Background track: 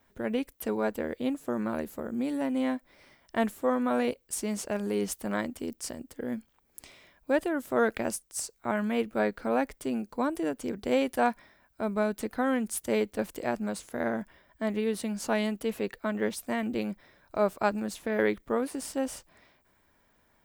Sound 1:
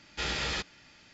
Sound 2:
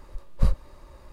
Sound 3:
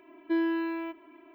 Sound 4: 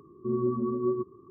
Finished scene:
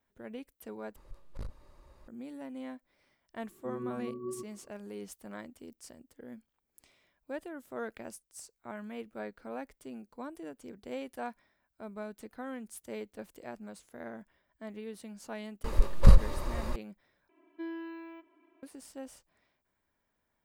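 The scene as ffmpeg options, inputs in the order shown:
-filter_complex "[2:a]asplit=2[a][b];[0:a]volume=-13.5dB[c];[a]asoftclip=type=hard:threshold=-25.5dB[d];[b]alimiter=level_in=20dB:limit=-1dB:release=50:level=0:latency=1[e];[c]asplit=3[f][g][h];[f]atrim=end=0.964[i];[d]atrim=end=1.12,asetpts=PTS-STARTPTS,volume=-10dB[j];[g]atrim=start=2.076:end=17.294[k];[3:a]atrim=end=1.34,asetpts=PTS-STARTPTS,volume=-12.5dB[l];[h]atrim=start=18.626[m];[4:a]atrim=end=1.3,asetpts=PTS-STARTPTS,volume=-11.5dB,afade=t=in:d=0.004:c=hsin,afade=t=out:st=1.296:d=0.004:c=hsin,adelay=3400[n];[e]atrim=end=1.12,asetpts=PTS-STARTPTS,volume=-6.5dB,afade=t=in:d=0.004:c=hsin,afade=t=out:st=1.116:d=0.004:c=hsin,adelay=15640[o];[i][j]acrossfade=d=0.004:c1=hsin:c2=hsin[p];[p][k]acrossfade=d=0.004:c1=hsin:c2=hsin[q];[q][l]acrossfade=d=0.004:c1=hsin:c2=hsin[r];[r][m]acrossfade=d=0.004:c1=hsin:c2=hsin[s];[s][n][o]amix=inputs=3:normalize=0"

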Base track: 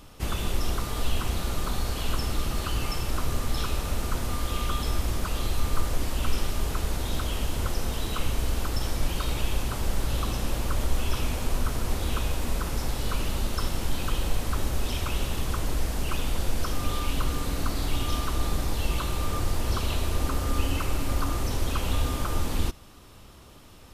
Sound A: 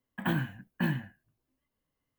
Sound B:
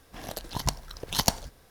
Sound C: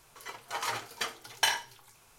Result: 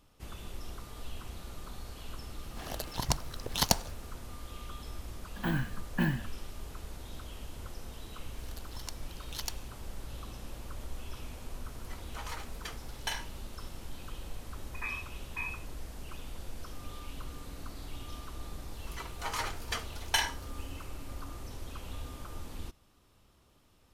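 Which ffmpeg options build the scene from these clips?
-filter_complex "[2:a]asplit=2[a][b];[1:a]asplit=2[c][d];[3:a]asplit=2[e][f];[0:a]volume=-15.5dB[g];[c]dynaudnorm=f=110:g=5:m=17dB[h];[b]highpass=1.3k[i];[d]lowpass=f=2.3k:t=q:w=0.5098,lowpass=f=2.3k:t=q:w=0.6013,lowpass=f=2.3k:t=q:w=0.9,lowpass=f=2.3k:t=q:w=2.563,afreqshift=-2700[j];[a]atrim=end=1.7,asetpts=PTS-STARTPTS,volume=-2dB,afade=t=in:d=0.004:c=hsin,afade=t=out:st=1.696:d=0.004:c=hsin,adelay=2430[k];[h]atrim=end=2.18,asetpts=PTS-STARTPTS,volume=-15dB,afade=t=in:d=0.004:c=hsin,afade=t=out:st=2.176:d=0.004:c=hsin,adelay=5180[l];[i]atrim=end=1.7,asetpts=PTS-STARTPTS,volume=-12.5dB,afade=t=in:d=0.004:c=hsin,afade=t=out:st=1.696:d=0.004:c=hsin,adelay=8200[m];[e]atrim=end=2.18,asetpts=PTS-STARTPTS,volume=-9.5dB,afade=t=in:d=0.004:c=hsin,afade=t=out:st=2.176:d=0.004:c=hsin,adelay=11640[n];[j]atrim=end=2.18,asetpts=PTS-STARTPTS,volume=-9.5dB,afade=t=in:d=0.004:c=hsin,afade=t=out:st=2.176:d=0.004:c=hsin,adelay=14560[o];[f]atrim=end=2.18,asetpts=PTS-STARTPTS,volume=-2dB,afade=t=in:d=0.004:c=hsin,afade=t=out:st=2.176:d=0.004:c=hsin,adelay=18710[p];[g][k][l][m][n][o][p]amix=inputs=7:normalize=0"

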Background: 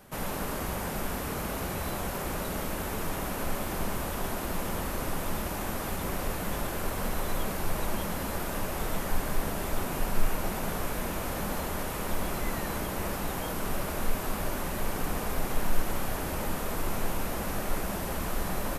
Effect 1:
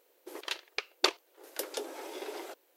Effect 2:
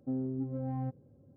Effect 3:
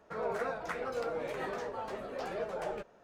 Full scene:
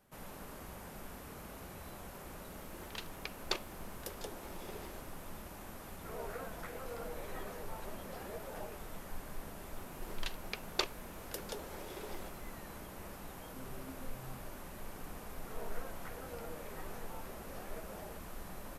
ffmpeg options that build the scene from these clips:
-filter_complex "[1:a]asplit=2[a][b];[3:a]asplit=2[c][d];[0:a]volume=-15.5dB[e];[2:a]asplit=2[f][g];[g]adelay=8.9,afreqshift=-1.9[h];[f][h]amix=inputs=2:normalize=1[i];[a]atrim=end=2.76,asetpts=PTS-STARTPTS,volume=-9.5dB,afade=t=in:d=0.004:c=hsin,afade=t=out:st=2.756:d=0.004:c=hsin,adelay=2470[j];[c]atrim=end=3.03,asetpts=PTS-STARTPTS,volume=-10dB,afade=t=in:d=0.004:c=hsin,afade=t=out:st=3.026:d=0.004:c=hsin,adelay=5940[k];[b]atrim=end=2.76,asetpts=PTS-STARTPTS,volume=-7dB,afade=t=in:d=0.004:c=hsin,afade=t=out:st=2.756:d=0.004:c=hsin,adelay=9750[l];[i]atrim=end=1.36,asetpts=PTS-STARTPTS,volume=-14dB,afade=t=in:d=0.004:c=hsin,afade=t=out:st=1.356:d=0.004:c=hsin,adelay=594468S[m];[d]atrim=end=3.03,asetpts=PTS-STARTPTS,volume=-13dB,afade=t=in:d=0.004:c=hsin,afade=t=out:st=3.026:d=0.004:c=hsin,adelay=15360[n];[e][j][k][l][m][n]amix=inputs=6:normalize=0"

